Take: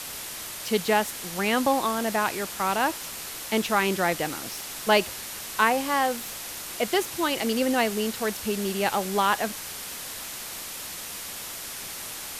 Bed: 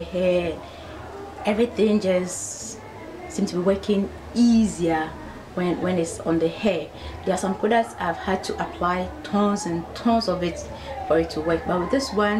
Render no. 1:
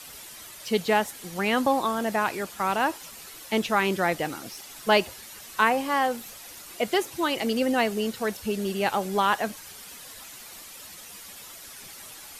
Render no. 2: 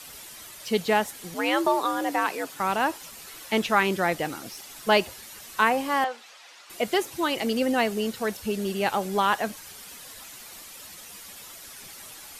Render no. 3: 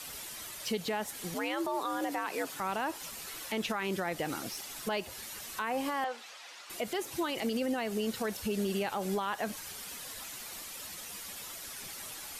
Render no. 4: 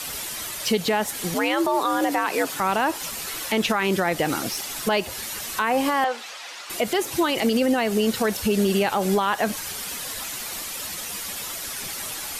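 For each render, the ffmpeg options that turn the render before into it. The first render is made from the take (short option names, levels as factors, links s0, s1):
-af "afftdn=nr=10:nf=-37"
-filter_complex "[0:a]asettb=1/sr,asplit=3[s0][s1][s2];[s0]atrim=end=1.344[s3];[s1]atrim=start=1.34:end=2.6,asetpts=PTS-STARTPTS,afade=t=in:d=0.004:c=qsin,afade=t=out:st=1.256:d=0.004:c=qsin,afreqshift=81[s4];[s2]atrim=start=2.596[s5];[s3][s4]acrossfade=d=0.004:c1=hsin:c2=qsin[s6];[s6][s5]acrossfade=d=0.004:c1=qsin:c2=hsin,asettb=1/sr,asplit=3[s7][s8][s9];[s7]atrim=end=3.284[s10];[s8]atrim=start=3.28:end=3.83,asetpts=PTS-STARTPTS,afade=t=in:d=0.004:c=qsin,afade=t=out:st=0.546:d=0.004:c=qsin,equalizer=f=1600:t=o:w=2.1:g=3[s11];[s9]atrim=start=3.826[s12];[s10][s11]acrossfade=d=0.004:c1=hsin:c2=qsin[s13];[s13][s12]acrossfade=d=0.004:c1=qsin:c2=hsin,asettb=1/sr,asplit=3[s14][s15][s16];[s14]atrim=end=6.044[s17];[s15]atrim=start=6.04:end=6.7,asetpts=PTS-STARTPTS,afade=t=in:d=0.004:c=qsin,afade=t=out:st=0.656:d=0.004:c=qsin,highpass=700,lowpass=4400[s18];[s16]atrim=start=6.696[s19];[s17][s18]acrossfade=d=0.004:c1=hsin:c2=qsin[s20];[s20][s19]acrossfade=d=0.004:c1=qsin:c2=hsin"
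-af "acompressor=threshold=0.0501:ratio=6,alimiter=limit=0.0631:level=0:latency=1:release=44"
-af "volume=3.76"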